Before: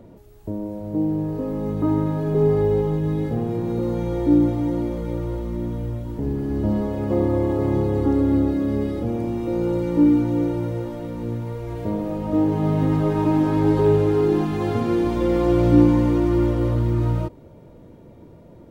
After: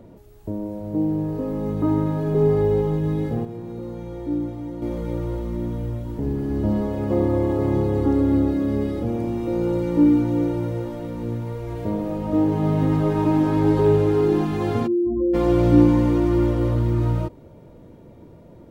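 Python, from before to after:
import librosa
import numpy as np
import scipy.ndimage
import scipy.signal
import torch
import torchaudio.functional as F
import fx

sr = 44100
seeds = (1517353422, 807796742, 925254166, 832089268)

y = fx.spec_expand(x, sr, power=2.8, at=(14.86, 15.33), fade=0.02)
y = fx.edit(y, sr, fx.fade_down_up(start_s=3.03, length_s=2.21, db=-9.0, fade_s=0.42, curve='log'), tone=tone)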